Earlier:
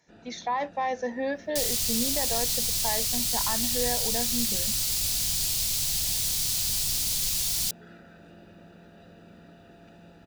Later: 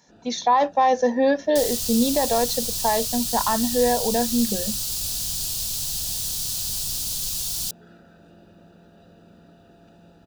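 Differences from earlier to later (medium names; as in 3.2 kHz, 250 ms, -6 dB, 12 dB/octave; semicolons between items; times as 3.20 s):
speech +11.0 dB; master: add peaking EQ 2.1 kHz -11 dB 0.49 oct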